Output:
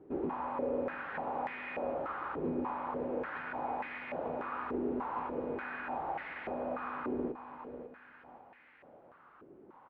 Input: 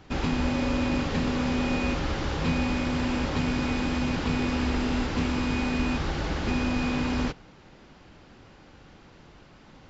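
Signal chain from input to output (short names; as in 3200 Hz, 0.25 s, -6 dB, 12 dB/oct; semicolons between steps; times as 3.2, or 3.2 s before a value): air absorption 490 m; feedback echo 0.546 s, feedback 38%, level -11.5 dB; dynamic EQ 770 Hz, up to +4 dB, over -42 dBFS, Q 0.79; in parallel at +2 dB: compressor, threshold -35 dBFS, peak gain reduction 13 dB; on the sum: stepped band-pass 3.4 Hz 380–2000 Hz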